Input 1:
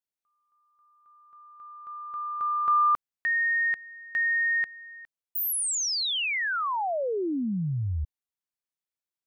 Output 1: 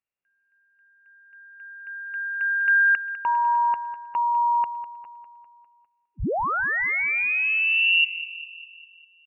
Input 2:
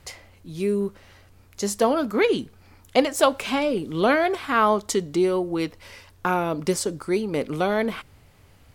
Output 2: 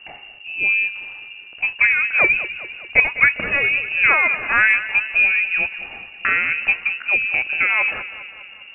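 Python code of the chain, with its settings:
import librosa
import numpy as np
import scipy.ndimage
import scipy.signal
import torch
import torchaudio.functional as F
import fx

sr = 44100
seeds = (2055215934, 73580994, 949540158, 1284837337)

y = fx.low_shelf(x, sr, hz=98.0, db=9.0)
y = fx.echo_feedback(y, sr, ms=201, feedback_pct=57, wet_db=-14)
y = fx.freq_invert(y, sr, carrier_hz=2800)
y = F.gain(torch.from_numpy(y), 3.5).numpy()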